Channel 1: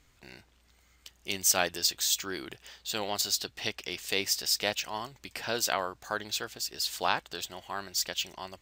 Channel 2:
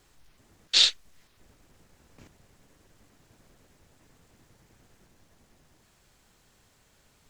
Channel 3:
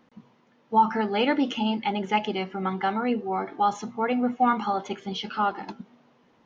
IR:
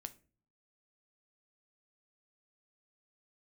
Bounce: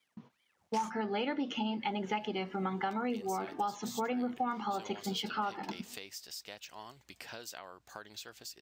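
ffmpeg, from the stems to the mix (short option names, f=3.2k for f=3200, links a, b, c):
-filter_complex "[0:a]acompressor=threshold=-35dB:ratio=6,adelay=1850,volume=-7.5dB[a];[1:a]aeval=exprs='if(lt(val(0),0),0.447*val(0),val(0))':c=same,highpass=f=420:t=q:w=4.9,aeval=exprs='val(0)*sin(2*PI*1500*n/s+1500*0.85/2.3*sin(2*PI*2.3*n/s))':c=same,volume=-11.5dB[b];[2:a]agate=range=-30dB:threshold=-52dB:ratio=16:detection=peak,volume=-2.5dB[c];[a][b][c]amix=inputs=3:normalize=0,highpass=65,acompressor=threshold=-31dB:ratio=6"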